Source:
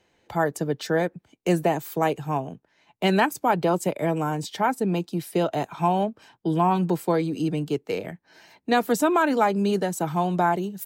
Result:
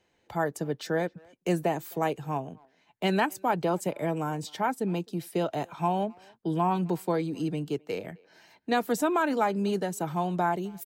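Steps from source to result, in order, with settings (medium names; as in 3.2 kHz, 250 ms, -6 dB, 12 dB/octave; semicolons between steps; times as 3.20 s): speakerphone echo 260 ms, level -26 dB; trim -5 dB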